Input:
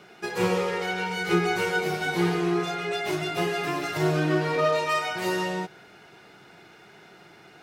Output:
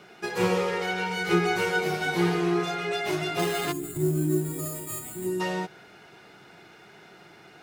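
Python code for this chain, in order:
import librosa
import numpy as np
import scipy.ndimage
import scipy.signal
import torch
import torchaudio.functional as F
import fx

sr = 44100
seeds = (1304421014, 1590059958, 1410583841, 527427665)

y = fx.sample_hold(x, sr, seeds[0], rate_hz=5700.0, jitter_pct=0, at=(3.39, 5.27))
y = fx.spec_box(y, sr, start_s=3.72, length_s=1.68, low_hz=410.0, high_hz=6700.0, gain_db=-19)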